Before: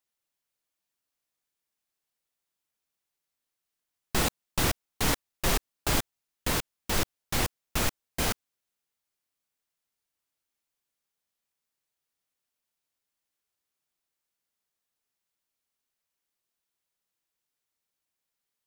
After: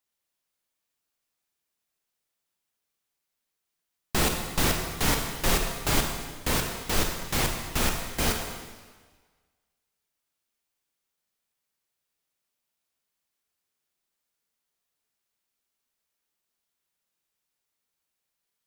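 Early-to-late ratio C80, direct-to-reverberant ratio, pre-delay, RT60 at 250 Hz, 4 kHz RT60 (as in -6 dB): 6.0 dB, 2.5 dB, 19 ms, 1.4 s, 1.4 s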